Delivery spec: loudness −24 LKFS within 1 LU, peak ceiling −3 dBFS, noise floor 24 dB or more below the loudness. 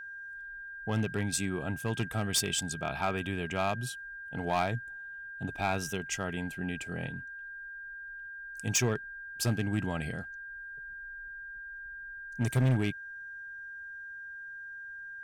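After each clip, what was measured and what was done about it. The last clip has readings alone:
share of clipped samples 0.7%; peaks flattened at −21.5 dBFS; interfering tone 1,600 Hz; level of the tone −41 dBFS; integrated loudness −34.5 LKFS; sample peak −21.5 dBFS; target loudness −24.0 LKFS
→ clipped peaks rebuilt −21.5 dBFS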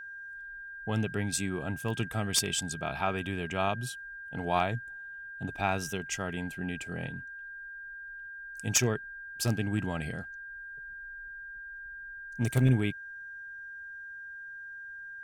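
share of clipped samples 0.0%; interfering tone 1,600 Hz; level of the tone −41 dBFS
→ notch filter 1,600 Hz, Q 30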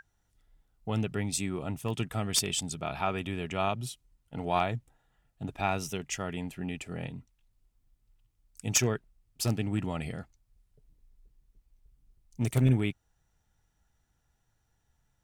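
interfering tone none found; integrated loudness −32.0 LKFS; sample peak −12.5 dBFS; target loudness −24.0 LKFS
→ level +8 dB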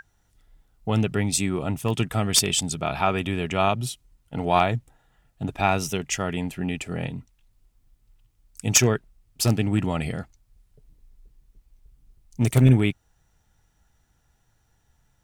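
integrated loudness −24.0 LKFS; sample peak −4.5 dBFS; background noise floor −67 dBFS

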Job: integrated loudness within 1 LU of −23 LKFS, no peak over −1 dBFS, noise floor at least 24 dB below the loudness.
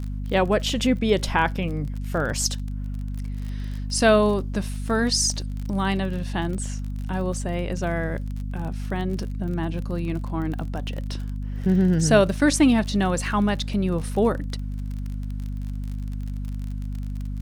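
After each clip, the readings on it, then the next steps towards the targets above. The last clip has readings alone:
crackle rate 37 per second; mains hum 50 Hz; hum harmonics up to 250 Hz; level of the hum −27 dBFS; integrated loudness −25.0 LKFS; sample peak −3.0 dBFS; target loudness −23.0 LKFS
→ click removal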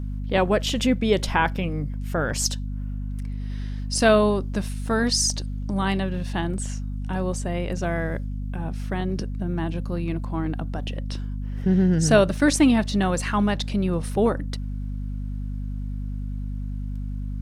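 crackle rate 0.11 per second; mains hum 50 Hz; hum harmonics up to 250 Hz; level of the hum −27 dBFS
→ hum removal 50 Hz, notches 5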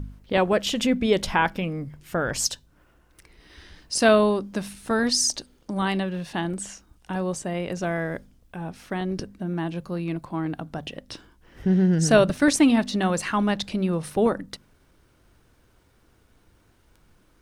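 mains hum none found; integrated loudness −24.0 LKFS; sample peak −4.5 dBFS; target loudness −23.0 LKFS
→ level +1 dB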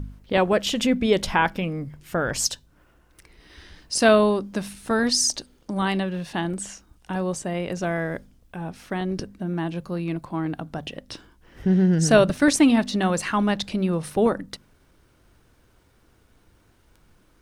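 integrated loudness −23.0 LKFS; sample peak −3.5 dBFS; background noise floor −60 dBFS

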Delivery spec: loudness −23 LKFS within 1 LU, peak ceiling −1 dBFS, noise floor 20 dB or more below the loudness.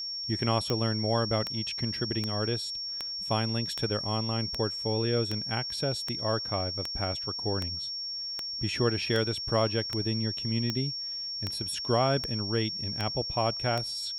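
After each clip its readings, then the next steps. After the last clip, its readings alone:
number of clicks 18; interfering tone 5,500 Hz; level of the tone −33 dBFS; integrated loudness −29.5 LKFS; sample peak −12.5 dBFS; target loudness −23.0 LKFS
→ click removal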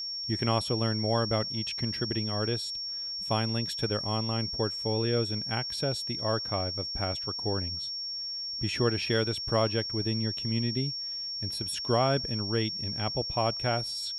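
number of clicks 0; interfering tone 5,500 Hz; level of the tone −33 dBFS
→ notch filter 5,500 Hz, Q 30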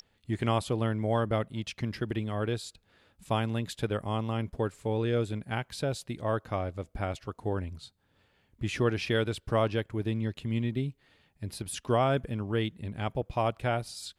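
interfering tone none found; integrated loudness −31.5 LKFS; sample peak −14.0 dBFS; target loudness −23.0 LKFS
→ level +8.5 dB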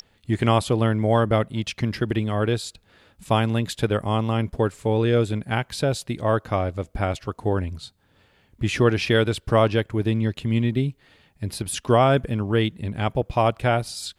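integrated loudness −23.0 LKFS; sample peak −5.5 dBFS; background noise floor −63 dBFS

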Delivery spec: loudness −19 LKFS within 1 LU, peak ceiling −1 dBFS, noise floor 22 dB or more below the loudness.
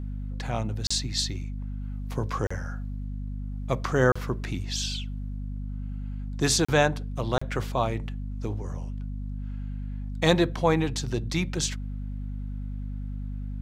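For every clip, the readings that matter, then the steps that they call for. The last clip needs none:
number of dropouts 5; longest dropout 35 ms; mains hum 50 Hz; hum harmonics up to 250 Hz; level of the hum −31 dBFS; integrated loudness −29.0 LKFS; sample peak −5.0 dBFS; target loudness −19.0 LKFS
→ repair the gap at 0:00.87/0:02.47/0:04.12/0:06.65/0:07.38, 35 ms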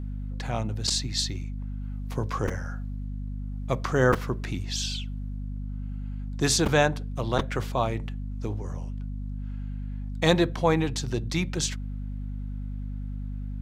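number of dropouts 0; mains hum 50 Hz; hum harmonics up to 250 Hz; level of the hum −31 dBFS
→ mains-hum notches 50/100/150/200/250 Hz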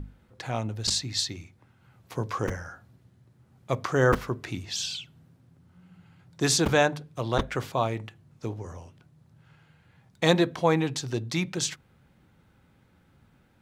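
mains hum none found; integrated loudness −27.5 LKFS; sample peak −5.0 dBFS; target loudness −19.0 LKFS
→ level +8.5 dB
brickwall limiter −1 dBFS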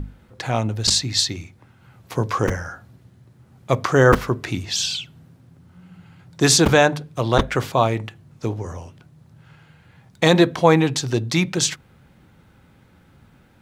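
integrated loudness −19.5 LKFS; sample peak −1.0 dBFS; background noise floor −54 dBFS

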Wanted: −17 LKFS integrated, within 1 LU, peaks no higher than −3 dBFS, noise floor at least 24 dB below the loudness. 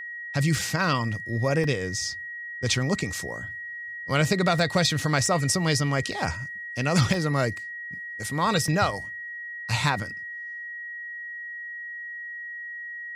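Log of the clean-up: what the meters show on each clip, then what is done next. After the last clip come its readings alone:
number of dropouts 7; longest dropout 1.4 ms; interfering tone 1,900 Hz; level of the tone −34 dBFS; integrated loudness −27.0 LKFS; sample peak −8.5 dBFS; target loudness −17.0 LKFS
→ repair the gap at 0:00.59/0:01.64/0:04.59/0:05.26/0:06.12/0:07.14/0:08.68, 1.4 ms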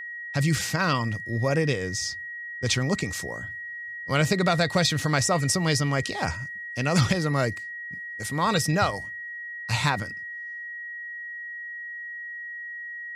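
number of dropouts 0; interfering tone 1,900 Hz; level of the tone −34 dBFS
→ notch filter 1,900 Hz, Q 30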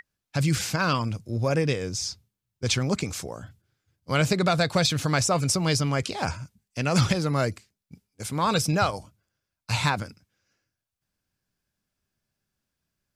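interfering tone none found; integrated loudness −25.5 LKFS; sample peak −8.5 dBFS; target loudness −17.0 LKFS
→ level +8.5 dB
brickwall limiter −3 dBFS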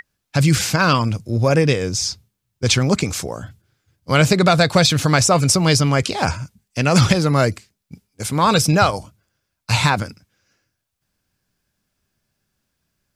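integrated loudness −17.0 LKFS; sample peak −3.0 dBFS; background noise floor −77 dBFS

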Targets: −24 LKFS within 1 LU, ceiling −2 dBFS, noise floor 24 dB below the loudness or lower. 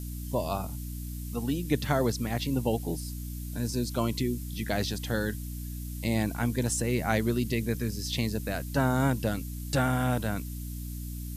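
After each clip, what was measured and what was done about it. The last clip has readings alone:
mains hum 60 Hz; hum harmonics up to 300 Hz; level of the hum −34 dBFS; background noise floor −37 dBFS; target noise floor −55 dBFS; integrated loudness −30.5 LKFS; sample peak −10.5 dBFS; target loudness −24.0 LKFS
→ hum removal 60 Hz, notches 5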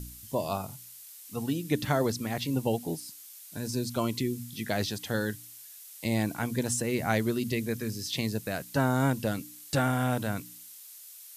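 mains hum none found; background noise floor −49 dBFS; target noise floor −55 dBFS
→ broadband denoise 6 dB, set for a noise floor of −49 dBFS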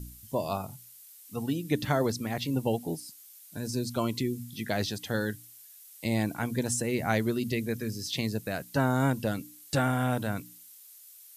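background noise floor −52 dBFS; target noise floor −55 dBFS
→ broadband denoise 6 dB, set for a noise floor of −52 dBFS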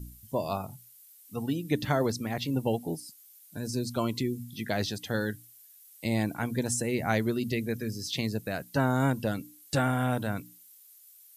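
background noise floor −55 dBFS; integrated loudness −31.0 LKFS; sample peak −11.0 dBFS; target loudness −24.0 LKFS
→ level +7 dB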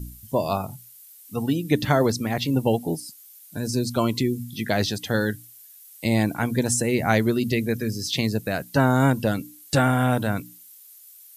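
integrated loudness −24.0 LKFS; sample peak −4.0 dBFS; background noise floor −48 dBFS

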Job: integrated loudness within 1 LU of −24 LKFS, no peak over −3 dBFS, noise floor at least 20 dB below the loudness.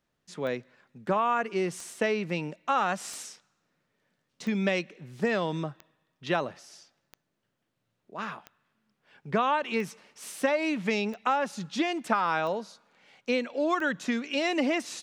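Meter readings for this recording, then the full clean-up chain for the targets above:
number of clicks 11; integrated loudness −29.5 LKFS; sample peak −10.0 dBFS; target loudness −24.0 LKFS
→ click removal
level +5.5 dB

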